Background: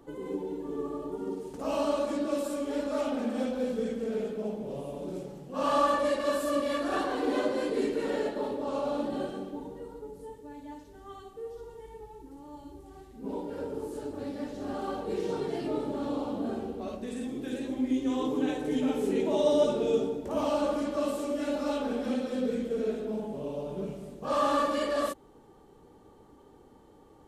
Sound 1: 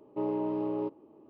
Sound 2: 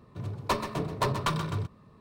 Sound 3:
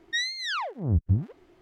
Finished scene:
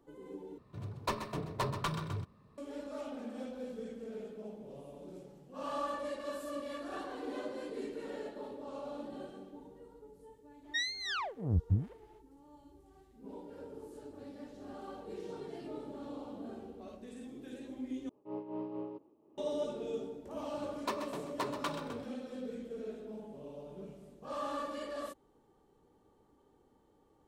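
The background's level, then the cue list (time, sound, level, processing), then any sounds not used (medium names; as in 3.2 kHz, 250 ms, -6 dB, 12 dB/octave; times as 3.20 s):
background -12 dB
0.58 s: replace with 2 -7 dB
10.61 s: add 3 -6.5 dB, fades 0.05 s
18.09 s: replace with 1 -6 dB + random flutter of the level
20.38 s: add 2 -8 dB + Chebyshev high-pass 280 Hz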